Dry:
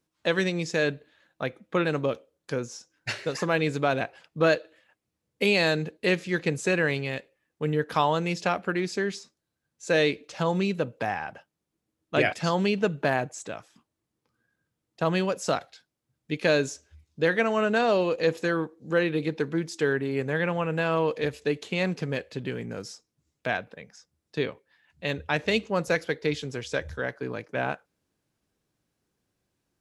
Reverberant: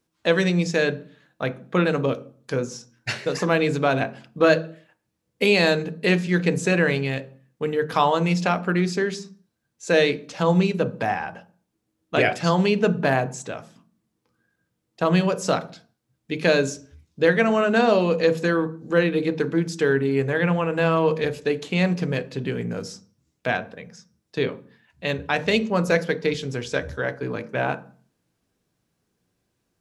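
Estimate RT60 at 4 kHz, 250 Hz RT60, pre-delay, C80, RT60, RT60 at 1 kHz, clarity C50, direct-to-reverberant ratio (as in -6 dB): 0.40 s, 0.70 s, 3 ms, 22.5 dB, 0.45 s, 0.45 s, 18.0 dB, 10.5 dB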